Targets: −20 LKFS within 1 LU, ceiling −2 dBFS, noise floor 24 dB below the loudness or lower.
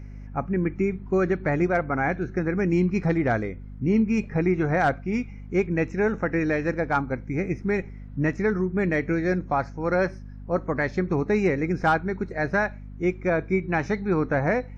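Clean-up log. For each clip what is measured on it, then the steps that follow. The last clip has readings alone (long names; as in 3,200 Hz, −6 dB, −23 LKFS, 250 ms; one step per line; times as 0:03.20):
mains hum 50 Hz; hum harmonics up to 250 Hz; level of the hum −38 dBFS; integrated loudness −25.0 LKFS; sample peak −11.5 dBFS; target loudness −20.0 LKFS
→ mains-hum notches 50/100/150/200/250 Hz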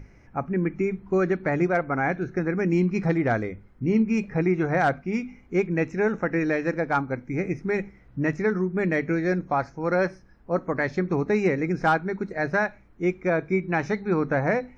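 mains hum none found; integrated loudness −25.5 LKFS; sample peak −12.0 dBFS; target loudness −20.0 LKFS
→ level +5.5 dB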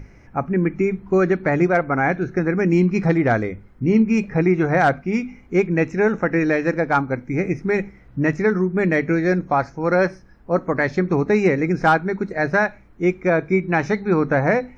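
integrated loudness −20.0 LKFS; sample peak −6.5 dBFS; background noise floor −47 dBFS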